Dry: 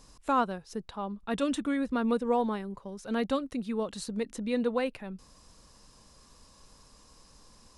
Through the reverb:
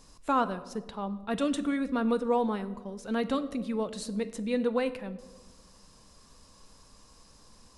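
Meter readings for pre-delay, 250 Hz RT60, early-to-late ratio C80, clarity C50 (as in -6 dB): 4 ms, 1.9 s, 16.5 dB, 15.0 dB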